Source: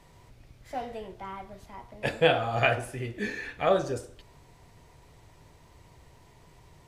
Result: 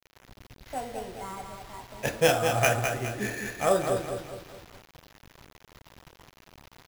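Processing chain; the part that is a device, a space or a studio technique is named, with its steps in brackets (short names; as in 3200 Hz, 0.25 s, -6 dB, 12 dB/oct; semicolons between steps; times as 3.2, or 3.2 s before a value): feedback echo 0.208 s, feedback 43%, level -6 dB; early 8-bit sampler (sample-rate reducer 8600 Hz, jitter 0%; bit-crush 8-bit)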